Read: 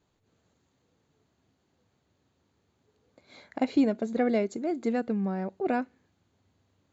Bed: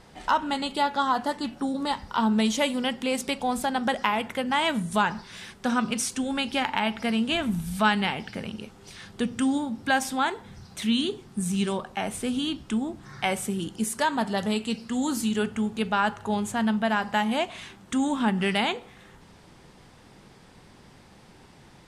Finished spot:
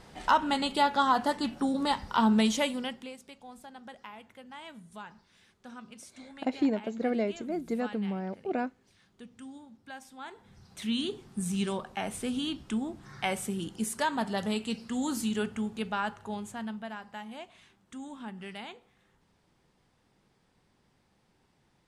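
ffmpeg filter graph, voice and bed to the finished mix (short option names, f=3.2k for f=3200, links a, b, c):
-filter_complex "[0:a]adelay=2850,volume=-3.5dB[a];[1:a]volume=16.5dB,afade=t=out:st=2.33:d=0.83:silence=0.0891251,afade=t=in:st=10.16:d=1.02:silence=0.141254,afade=t=out:st=15.31:d=1.71:silence=0.223872[b];[a][b]amix=inputs=2:normalize=0"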